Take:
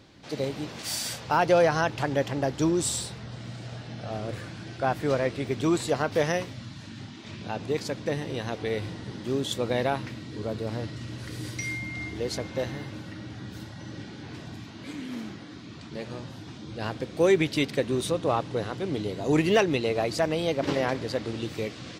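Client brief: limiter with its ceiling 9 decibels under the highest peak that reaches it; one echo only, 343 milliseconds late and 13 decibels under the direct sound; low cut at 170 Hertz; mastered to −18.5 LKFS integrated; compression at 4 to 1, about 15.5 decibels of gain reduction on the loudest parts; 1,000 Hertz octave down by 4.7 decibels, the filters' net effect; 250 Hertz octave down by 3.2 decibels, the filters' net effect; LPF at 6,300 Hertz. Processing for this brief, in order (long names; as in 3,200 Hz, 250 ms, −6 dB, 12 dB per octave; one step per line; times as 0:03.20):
high-pass filter 170 Hz
low-pass filter 6,300 Hz
parametric band 250 Hz −3 dB
parametric band 1,000 Hz −6.5 dB
downward compressor 4 to 1, threshold −38 dBFS
brickwall limiter −31.5 dBFS
single-tap delay 343 ms −13 dB
level +24 dB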